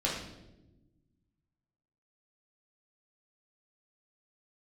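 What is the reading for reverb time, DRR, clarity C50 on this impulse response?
1.0 s, -5.0 dB, 3.0 dB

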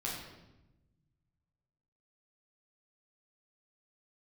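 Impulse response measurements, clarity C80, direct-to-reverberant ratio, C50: 4.5 dB, -5.0 dB, 2.0 dB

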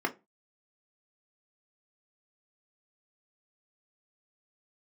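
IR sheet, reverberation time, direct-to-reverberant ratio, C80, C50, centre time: 0.25 s, 3.0 dB, 27.0 dB, 19.5 dB, 8 ms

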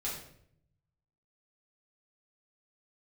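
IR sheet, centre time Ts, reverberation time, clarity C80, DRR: 43 ms, 0.65 s, 7.0 dB, -7.0 dB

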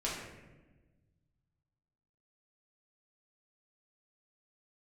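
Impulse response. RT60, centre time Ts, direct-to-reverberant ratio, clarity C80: 1.2 s, 66 ms, -6.5 dB, 4.0 dB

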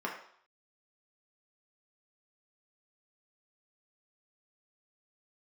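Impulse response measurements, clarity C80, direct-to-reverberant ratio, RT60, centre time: 9.5 dB, -2.0 dB, 0.60 s, 28 ms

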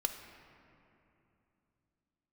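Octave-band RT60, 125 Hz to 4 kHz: 4.1 s, 3.8 s, 3.0 s, 2.8 s, 2.5 s, 1.6 s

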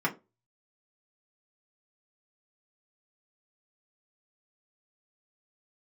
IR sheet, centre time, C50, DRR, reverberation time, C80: 9 ms, 18.0 dB, -3.5 dB, 0.25 s, 24.5 dB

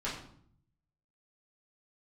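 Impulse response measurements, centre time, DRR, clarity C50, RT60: 36 ms, -8.5 dB, 5.0 dB, 0.60 s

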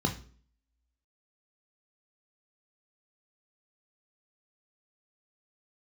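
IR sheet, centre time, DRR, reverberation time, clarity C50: 15 ms, 3.0 dB, 0.45 s, 12.5 dB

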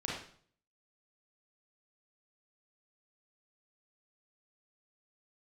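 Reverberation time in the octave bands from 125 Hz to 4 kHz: 0.65 s, 0.55 s, 0.55 s, 0.50 s, 0.50 s, 0.50 s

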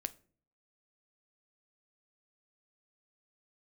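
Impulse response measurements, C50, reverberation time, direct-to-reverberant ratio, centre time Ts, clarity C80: 20.5 dB, 0.45 s, 12.0 dB, 3 ms, 25.0 dB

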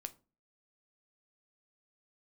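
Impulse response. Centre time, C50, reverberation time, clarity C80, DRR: 3 ms, 19.5 dB, 0.35 s, 26.0 dB, 9.5 dB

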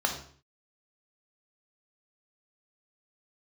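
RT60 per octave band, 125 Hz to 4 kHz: 0.60 s, 0.55 s, 0.50 s, 0.50 s, 0.45 s, 0.45 s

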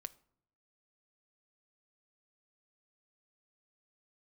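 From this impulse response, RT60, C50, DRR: 0.70 s, 21.0 dB, 12.5 dB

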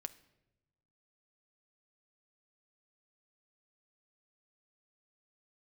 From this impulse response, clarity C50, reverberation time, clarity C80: 17.5 dB, 0.95 s, 20.0 dB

